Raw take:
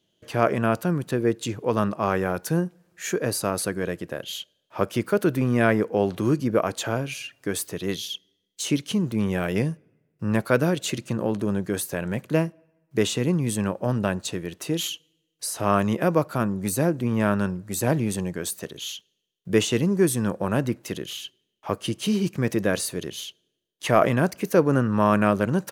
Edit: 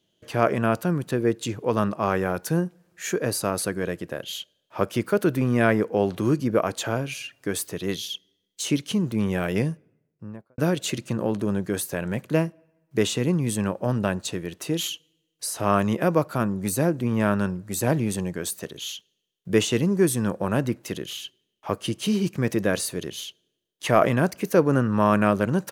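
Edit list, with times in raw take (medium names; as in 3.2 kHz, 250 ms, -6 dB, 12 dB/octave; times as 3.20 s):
9.67–10.58 s: studio fade out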